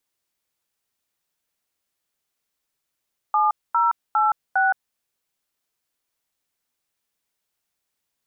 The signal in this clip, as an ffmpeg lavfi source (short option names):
-f lavfi -i "aevalsrc='0.119*clip(min(mod(t,0.405),0.169-mod(t,0.405))/0.002,0,1)*(eq(floor(t/0.405),0)*(sin(2*PI*852*mod(t,0.405))+sin(2*PI*1209*mod(t,0.405)))+eq(floor(t/0.405),1)*(sin(2*PI*941*mod(t,0.405))+sin(2*PI*1336*mod(t,0.405)))+eq(floor(t/0.405),2)*(sin(2*PI*852*mod(t,0.405))+sin(2*PI*1336*mod(t,0.405)))+eq(floor(t/0.405),3)*(sin(2*PI*770*mod(t,0.405))+sin(2*PI*1477*mod(t,0.405))))':d=1.62:s=44100"